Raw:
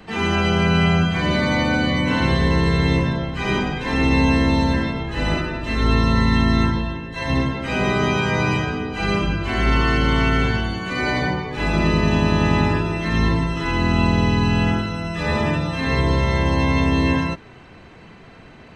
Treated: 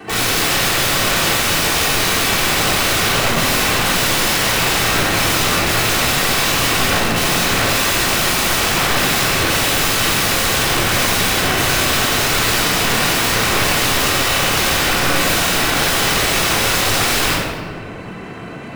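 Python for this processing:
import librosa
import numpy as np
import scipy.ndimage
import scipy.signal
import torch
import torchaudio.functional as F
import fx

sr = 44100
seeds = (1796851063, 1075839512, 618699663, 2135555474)

p1 = scipy.signal.medfilt(x, 9)
p2 = scipy.signal.sosfilt(scipy.signal.butter(2, 160.0, 'highpass', fs=sr, output='sos'), p1)
p3 = fx.rider(p2, sr, range_db=10, speed_s=0.5)
p4 = p2 + (p3 * 10.0 ** (2.0 / 20.0))
p5 = (np.mod(10.0 ** (17.5 / 20.0) * p4 + 1.0, 2.0) - 1.0) / 10.0 ** (17.5 / 20.0)
y = fx.room_shoebox(p5, sr, seeds[0], volume_m3=1600.0, walls='mixed', distance_m=3.5)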